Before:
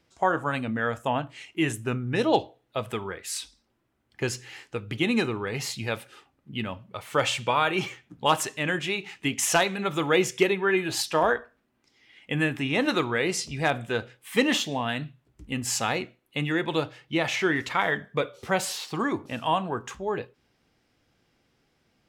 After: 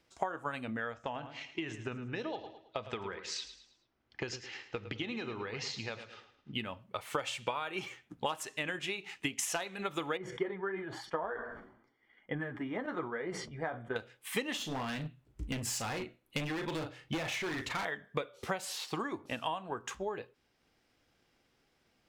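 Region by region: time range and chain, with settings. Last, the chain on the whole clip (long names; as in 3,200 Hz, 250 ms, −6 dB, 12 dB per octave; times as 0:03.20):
0:00.93–0:06.54: Butterworth low-pass 6,100 Hz + downward compressor 3 to 1, threshold −31 dBFS + repeating echo 108 ms, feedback 39%, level −11 dB
0:10.17–0:13.96: flanger 1 Hz, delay 3.9 ms, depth 7 ms, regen −31% + Savitzky-Golay smoothing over 41 samples + level that may fall only so fast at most 74 dB per second
0:14.57–0:17.85: low-shelf EQ 230 Hz +11 dB + double-tracking delay 38 ms −8.5 dB + hard clipping −25 dBFS
whole clip: parametric band 130 Hz −5.5 dB 2.3 octaves; downward compressor 4 to 1, threshold −33 dBFS; transient designer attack +4 dB, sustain −2 dB; level −2.5 dB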